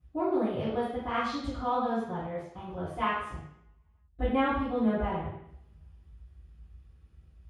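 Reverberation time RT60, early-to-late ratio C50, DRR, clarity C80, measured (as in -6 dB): 0.70 s, 0.0 dB, -19.0 dB, 4.0 dB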